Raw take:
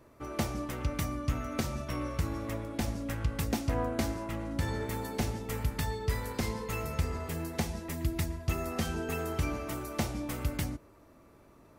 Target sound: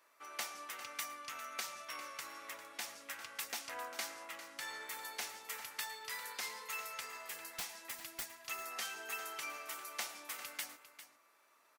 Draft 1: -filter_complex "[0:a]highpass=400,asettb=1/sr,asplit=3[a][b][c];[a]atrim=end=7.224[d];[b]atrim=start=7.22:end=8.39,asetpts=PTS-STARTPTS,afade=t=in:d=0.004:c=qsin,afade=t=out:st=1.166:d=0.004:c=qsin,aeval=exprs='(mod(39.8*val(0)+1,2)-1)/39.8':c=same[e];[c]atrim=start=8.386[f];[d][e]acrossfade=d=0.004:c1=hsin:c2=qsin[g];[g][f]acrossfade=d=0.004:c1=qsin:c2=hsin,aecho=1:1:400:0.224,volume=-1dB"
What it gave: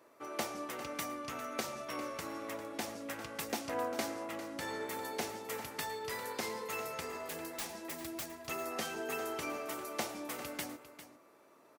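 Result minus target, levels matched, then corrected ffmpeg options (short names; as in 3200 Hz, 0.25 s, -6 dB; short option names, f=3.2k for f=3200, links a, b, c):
500 Hz band +10.5 dB
-filter_complex "[0:a]highpass=1.3k,asettb=1/sr,asplit=3[a][b][c];[a]atrim=end=7.224[d];[b]atrim=start=7.22:end=8.39,asetpts=PTS-STARTPTS,afade=t=in:d=0.004:c=qsin,afade=t=out:st=1.166:d=0.004:c=qsin,aeval=exprs='(mod(39.8*val(0)+1,2)-1)/39.8':c=same[e];[c]atrim=start=8.386[f];[d][e]acrossfade=d=0.004:c1=hsin:c2=qsin[g];[g][f]acrossfade=d=0.004:c1=qsin:c2=hsin,aecho=1:1:400:0.224,volume=-1dB"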